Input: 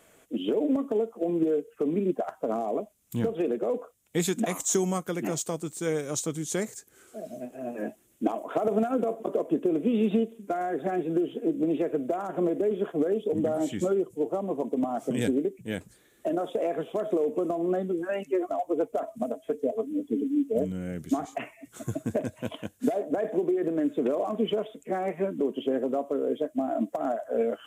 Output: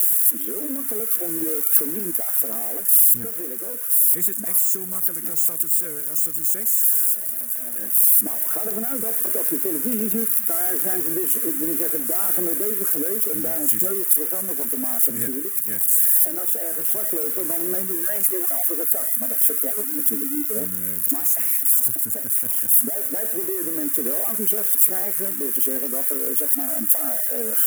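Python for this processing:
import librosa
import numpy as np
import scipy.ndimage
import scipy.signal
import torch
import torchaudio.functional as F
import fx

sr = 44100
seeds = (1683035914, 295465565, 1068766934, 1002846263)

y = x + 0.5 * 10.0 ** (-18.5 / 20.0) * np.diff(np.sign(x), prepend=np.sign(x[:1]))
y = fx.curve_eq(y, sr, hz=(190.0, 780.0, 1600.0, 4300.0, 11000.0), db=(0, -7, 3, -17, 14))
y = fx.rider(y, sr, range_db=10, speed_s=2.0)
y = scipy.signal.sosfilt(scipy.signal.butter(2, 89.0, 'highpass', fs=sr, output='sos'), y)
y = fx.peak_eq(y, sr, hz=160.0, db=-5.0, octaves=0.79)
y = fx.record_warp(y, sr, rpm=78.0, depth_cents=100.0)
y = y * 10.0 ** (-3.5 / 20.0)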